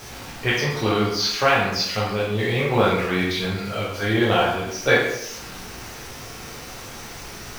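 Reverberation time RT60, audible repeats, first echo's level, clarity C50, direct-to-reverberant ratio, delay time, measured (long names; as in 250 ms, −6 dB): 0.80 s, no echo audible, no echo audible, 2.0 dB, −6.0 dB, no echo audible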